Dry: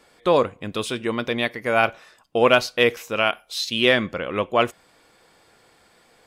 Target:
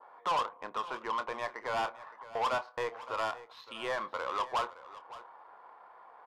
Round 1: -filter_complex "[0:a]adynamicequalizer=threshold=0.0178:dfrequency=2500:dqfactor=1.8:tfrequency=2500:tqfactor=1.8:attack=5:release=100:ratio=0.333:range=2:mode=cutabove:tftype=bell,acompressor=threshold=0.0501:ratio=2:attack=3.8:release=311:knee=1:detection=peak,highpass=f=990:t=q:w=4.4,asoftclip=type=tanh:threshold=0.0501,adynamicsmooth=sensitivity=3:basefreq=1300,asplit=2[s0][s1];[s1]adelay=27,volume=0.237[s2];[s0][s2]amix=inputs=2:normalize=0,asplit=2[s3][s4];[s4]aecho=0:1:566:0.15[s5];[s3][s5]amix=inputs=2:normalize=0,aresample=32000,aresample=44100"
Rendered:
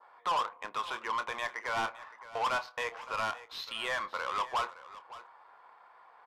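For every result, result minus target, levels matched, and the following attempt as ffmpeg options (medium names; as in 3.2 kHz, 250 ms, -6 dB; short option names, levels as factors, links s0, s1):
compression: peak gain reduction -3.5 dB; 2 kHz band +3.0 dB
-filter_complex "[0:a]adynamicequalizer=threshold=0.0178:dfrequency=2500:dqfactor=1.8:tfrequency=2500:tqfactor=1.8:attack=5:release=100:ratio=0.333:range=2:mode=cutabove:tftype=bell,acompressor=threshold=0.0224:ratio=2:attack=3.8:release=311:knee=1:detection=peak,highpass=f=990:t=q:w=4.4,asoftclip=type=tanh:threshold=0.0501,adynamicsmooth=sensitivity=3:basefreq=1300,asplit=2[s0][s1];[s1]adelay=27,volume=0.237[s2];[s0][s2]amix=inputs=2:normalize=0,asplit=2[s3][s4];[s4]aecho=0:1:566:0.15[s5];[s3][s5]amix=inputs=2:normalize=0,aresample=32000,aresample=44100"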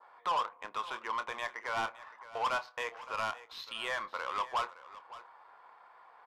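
2 kHz band +2.5 dB
-filter_complex "[0:a]adynamicequalizer=threshold=0.0178:dfrequency=2500:dqfactor=1.8:tfrequency=2500:tqfactor=1.8:attack=5:release=100:ratio=0.333:range=2:mode=cutabove:tftype=bell,acompressor=threshold=0.0224:ratio=2:attack=3.8:release=311:knee=1:detection=peak,highpass=f=990:t=q:w=4.4,tiltshelf=f=1500:g=8,asoftclip=type=tanh:threshold=0.0501,adynamicsmooth=sensitivity=3:basefreq=1300,asplit=2[s0][s1];[s1]adelay=27,volume=0.237[s2];[s0][s2]amix=inputs=2:normalize=0,asplit=2[s3][s4];[s4]aecho=0:1:566:0.15[s5];[s3][s5]amix=inputs=2:normalize=0,aresample=32000,aresample=44100"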